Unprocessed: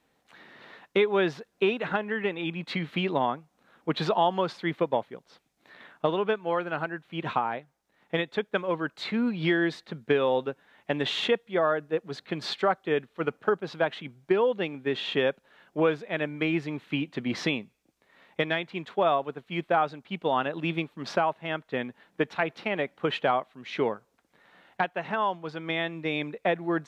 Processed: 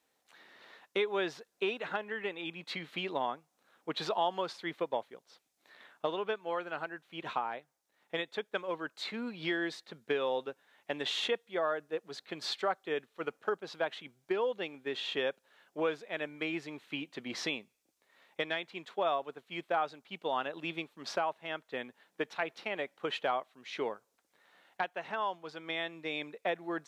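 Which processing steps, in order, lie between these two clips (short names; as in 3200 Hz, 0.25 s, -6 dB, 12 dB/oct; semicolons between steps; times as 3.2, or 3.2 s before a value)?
tone controls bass -11 dB, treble +8 dB; gain -7 dB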